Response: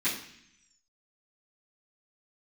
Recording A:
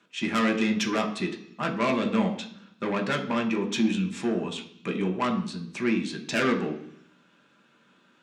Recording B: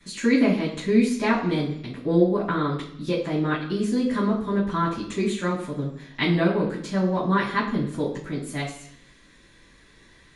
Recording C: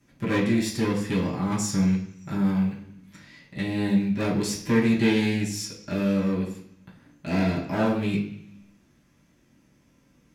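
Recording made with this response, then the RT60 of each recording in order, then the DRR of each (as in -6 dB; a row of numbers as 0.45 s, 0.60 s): B; 0.65 s, 0.65 s, 0.65 s; 2.0 dB, -14.5 dB, -7.0 dB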